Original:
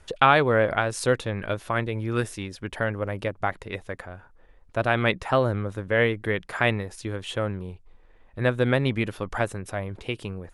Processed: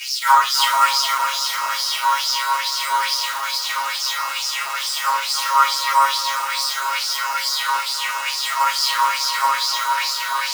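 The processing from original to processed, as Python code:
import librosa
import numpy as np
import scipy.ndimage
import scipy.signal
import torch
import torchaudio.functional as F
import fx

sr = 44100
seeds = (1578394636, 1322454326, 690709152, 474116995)

p1 = fx.bin_compress(x, sr, power=0.2)
p2 = scipy.signal.sosfilt(scipy.signal.butter(2, 51.0, 'highpass', fs=sr, output='sos'), p1)
p3 = fx.peak_eq(p2, sr, hz=3000.0, db=-14.5, octaves=0.33)
p4 = fx.hpss(p3, sr, part='percussive', gain_db=-14)
p5 = fx.peak_eq(p4, sr, hz=250.0, db=-4.0, octaves=0.22)
p6 = fx.sample_hold(p5, sr, seeds[0], rate_hz=4500.0, jitter_pct=0)
p7 = p5 + F.gain(torch.from_numpy(p6), -7.0).numpy()
p8 = fx.robotise(p7, sr, hz=136.0)
p9 = (np.mod(10.0 ** (13.5 / 20.0) * p8 + 1.0, 2.0) - 1.0) / 10.0 ** (13.5 / 20.0)
p10 = fx.filter_lfo_highpass(p9, sr, shape='sine', hz=2.3, low_hz=980.0, high_hz=5300.0, q=7.1)
p11 = p10 + fx.echo_split(p10, sr, split_hz=1300.0, low_ms=300, high_ms=413, feedback_pct=52, wet_db=-6.5, dry=0)
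p12 = fx.room_shoebox(p11, sr, seeds[1], volume_m3=140.0, walls='furnished', distance_m=4.7)
p13 = fx.band_widen(p12, sr, depth_pct=40)
y = F.gain(torch.from_numpy(p13), -11.0).numpy()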